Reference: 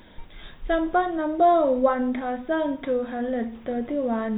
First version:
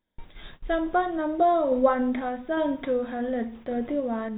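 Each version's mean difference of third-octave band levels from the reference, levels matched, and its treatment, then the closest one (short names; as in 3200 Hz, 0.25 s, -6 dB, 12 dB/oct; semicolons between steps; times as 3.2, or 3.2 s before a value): 1.5 dB: gate -42 dBFS, range -30 dB; random-step tremolo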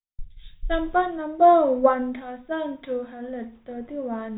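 4.5 dB: gate with hold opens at -34 dBFS; three-band expander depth 100%; gain -2.5 dB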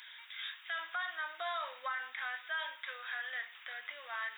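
14.0 dB: HPF 1500 Hz 24 dB/oct; limiter -35 dBFS, peak gain reduction 11.5 dB; gain +5.5 dB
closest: first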